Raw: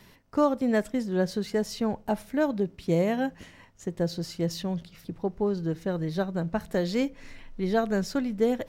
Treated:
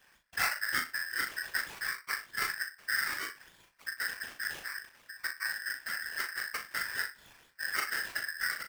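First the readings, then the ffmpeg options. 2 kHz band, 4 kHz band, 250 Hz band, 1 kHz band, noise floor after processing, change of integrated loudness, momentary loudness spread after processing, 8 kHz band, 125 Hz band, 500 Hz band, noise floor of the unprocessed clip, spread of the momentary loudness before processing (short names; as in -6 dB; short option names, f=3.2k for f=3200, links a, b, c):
+8.5 dB, +2.5 dB, -31.5 dB, -6.0 dB, -65 dBFS, -5.5 dB, 8 LU, +4.5 dB, under -25 dB, -28.0 dB, -55 dBFS, 8 LU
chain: -filter_complex "[0:a]highpass=120,afreqshift=-260,acrusher=samples=14:mix=1:aa=0.000001:lfo=1:lforange=8.4:lforate=3.3,afftfilt=real='hypot(re,im)*cos(2*PI*random(0))':imag='hypot(re,im)*sin(2*PI*random(1))':win_size=512:overlap=0.75,asplit=2[a][b];[b]adelay=38,volume=-6.5dB[c];[a][c]amix=inputs=2:normalize=0,asplit=2[d][e];[e]adelay=62,lowpass=f=1.1k:p=1,volume=-12.5dB,asplit=2[f][g];[g]adelay=62,lowpass=f=1.1k:p=1,volume=0.17[h];[f][h]amix=inputs=2:normalize=0[i];[d][i]amix=inputs=2:normalize=0,aeval=exprs='val(0)*sgn(sin(2*PI*1700*n/s))':c=same,volume=-3dB"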